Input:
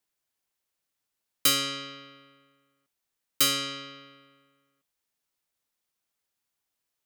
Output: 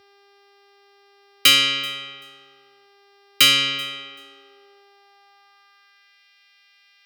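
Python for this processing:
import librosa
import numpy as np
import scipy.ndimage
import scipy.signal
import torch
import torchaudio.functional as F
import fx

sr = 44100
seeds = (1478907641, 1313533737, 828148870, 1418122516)

p1 = fx.peak_eq(x, sr, hz=2600.0, db=14.5, octaves=1.3)
p2 = fx.dmg_buzz(p1, sr, base_hz=400.0, harmonics=14, level_db=-58.0, tilt_db=-4, odd_only=False)
p3 = p2 + fx.echo_feedback(p2, sr, ms=384, feedback_pct=18, wet_db=-22.5, dry=0)
p4 = fx.filter_sweep_highpass(p3, sr, from_hz=69.0, to_hz=2200.0, start_s=3.09, end_s=6.24, q=1.8)
y = p4 * 10.0 ** (2.0 / 20.0)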